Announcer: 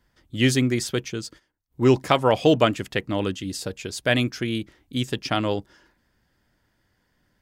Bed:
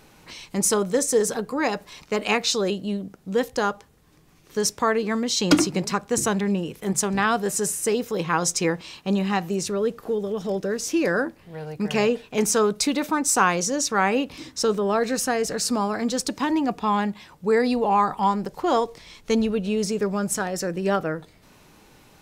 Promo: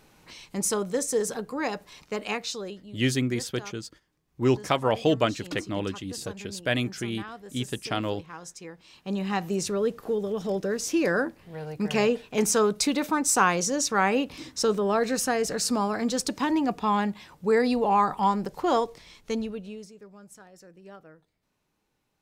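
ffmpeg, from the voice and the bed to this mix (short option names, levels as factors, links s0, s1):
-filter_complex "[0:a]adelay=2600,volume=0.562[s0];[1:a]volume=3.98,afade=t=out:st=2:d=0.95:silence=0.199526,afade=t=in:st=8.76:d=0.78:silence=0.133352,afade=t=out:st=18.69:d=1.22:silence=0.0794328[s1];[s0][s1]amix=inputs=2:normalize=0"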